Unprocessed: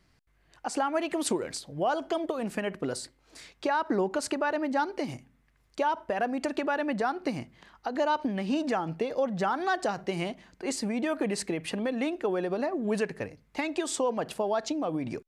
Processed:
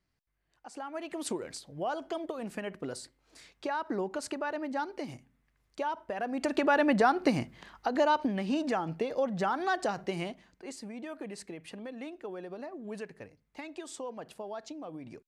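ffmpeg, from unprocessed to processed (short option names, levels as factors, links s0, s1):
-af "volume=1.68,afade=t=in:st=0.73:d=0.61:silence=0.375837,afade=t=in:st=6.23:d=0.55:silence=0.298538,afade=t=out:st=7.37:d=1.11:silence=0.473151,afade=t=out:st=10.04:d=0.68:silence=0.316228"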